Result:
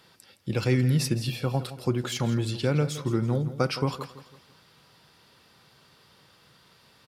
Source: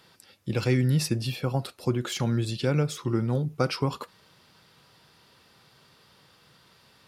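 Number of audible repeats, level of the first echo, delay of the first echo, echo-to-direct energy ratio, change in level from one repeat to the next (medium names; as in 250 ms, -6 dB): 3, -14.0 dB, 166 ms, -13.0 dB, -8.0 dB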